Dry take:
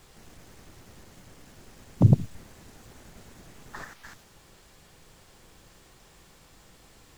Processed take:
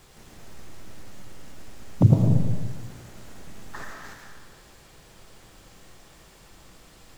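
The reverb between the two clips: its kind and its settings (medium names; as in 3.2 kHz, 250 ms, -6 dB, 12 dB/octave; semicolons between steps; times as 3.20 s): algorithmic reverb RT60 1.5 s, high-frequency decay 0.8×, pre-delay 65 ms, DRR 1.5 dB; trim +1.5 dB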